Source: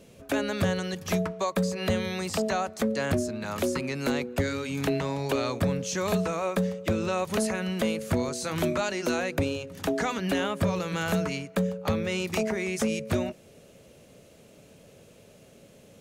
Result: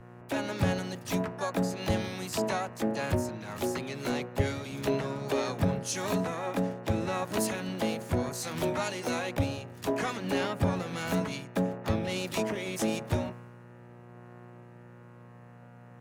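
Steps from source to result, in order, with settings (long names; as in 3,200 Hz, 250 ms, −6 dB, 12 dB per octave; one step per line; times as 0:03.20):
hum with harmonics 120 Hz, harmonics 16, −39 dBFS −5 dB per octave
pitch-shifted copies added +4 semitones −16 dB, +7 semitones −6 dB
multiband upward and downward expander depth 70%
level −4.5 dB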